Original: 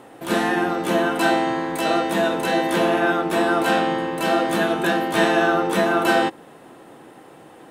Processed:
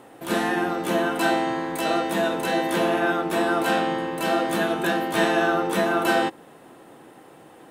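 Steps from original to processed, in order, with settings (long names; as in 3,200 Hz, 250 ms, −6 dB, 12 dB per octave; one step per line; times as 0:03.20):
high-shelf EQ 12,000 Hz +5.5 dB
level −3 dB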